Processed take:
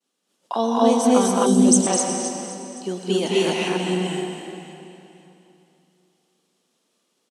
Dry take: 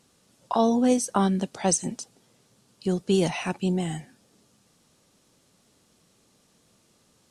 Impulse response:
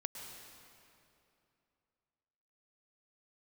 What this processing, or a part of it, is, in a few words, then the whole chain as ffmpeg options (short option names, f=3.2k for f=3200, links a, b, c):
stadium PA: -filter_complex "[0:a]agate=range=-33dB:threshold=-54dB:ratio=3:detection=peak,highpass=f=220:w=0.5412,highpass=f=220:w=1.3066,equalizer=f=3.1k:t=o:w=0.41:g=5,aecho=1:1:212.8|256.6:0.708|1[a];[1:a]atrim=start_sample=2205[b];[a][b]afir=irnorm=-1:irlink=0,asettb=1/sr,asplit=3[c][d][e];[c]atrim=end=1.464[f];[d]atrim=start=1.46:end=1.87,asetpts=PTS-STARTPTS,afade=t=in:d=0.004:c=qsin,afade=t=out:st=0.406:d=0.004:c=qsin,equalizer=f=125:t=o:w=1:g=6,equalizer=f=250:t=o:w=1:g=10,equalizer=f=1k:t=o:w=1:g=-12,equalizer=f=2k:t=o:w=1:g=-11,equalizer=f=8k:t=o:w=1:g=8[g];[e]atrim=start=1.866[h];[f][g]acrossfade=d=0.004:c1=hsin:c2=qsin[i];[i][h]acrossfade=d=0.004:c1=qsin:c2=hsin,aecho=1:1:519|1038|1557:0.141|0.0452|0.0145,volume=2.5dB"